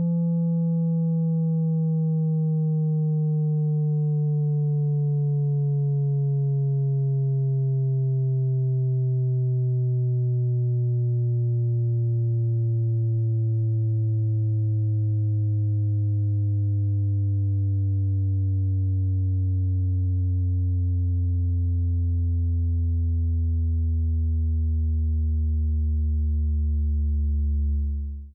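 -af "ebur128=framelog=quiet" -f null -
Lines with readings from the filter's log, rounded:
Integrated loudness:
  I:         -24.2 LUFS
  Threshold: -34.2 LUFS
Loudness range:
  LRA:         1.2 LU
  Threshold: -44.2 LUFS
  LRA low:   -24.9 LUFS
  LRA high:  -23.7 LUFS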